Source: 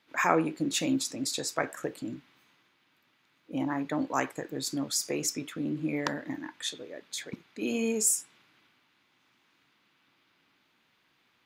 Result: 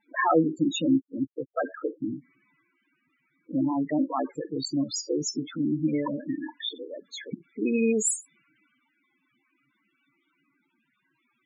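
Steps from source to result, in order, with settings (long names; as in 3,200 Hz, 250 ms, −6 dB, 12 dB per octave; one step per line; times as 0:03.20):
spectral peaks only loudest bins 8
0:00.87–0:02.14: linear-phase brick-wall low-pass 2,200 Hz
level +6 dB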